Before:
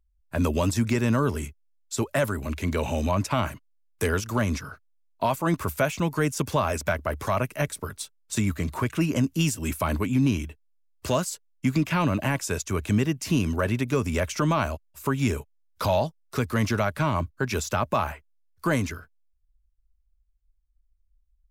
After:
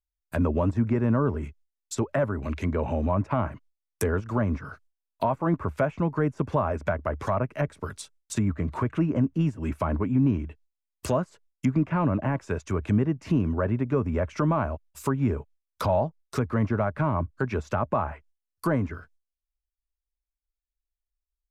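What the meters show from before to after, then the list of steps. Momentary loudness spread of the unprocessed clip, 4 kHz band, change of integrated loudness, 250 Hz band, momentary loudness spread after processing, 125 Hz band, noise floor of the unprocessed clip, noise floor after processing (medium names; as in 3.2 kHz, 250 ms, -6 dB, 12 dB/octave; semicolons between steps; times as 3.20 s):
8 LU, -12.0 dB, -0.5 dB, 0.0 dB, 9 LU, 0.0 dB, -67 dBFS, under -85 dBFS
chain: dynamic bell 3.9 kHz, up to -6 dB, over -47 dBFS, Q 0.88; gate with hold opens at -54 dBFS; treble shelf 5.3 kHz +7.5 dB; low-pass that closes with the level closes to 1.3 kHz, closed at -22.5 dBFS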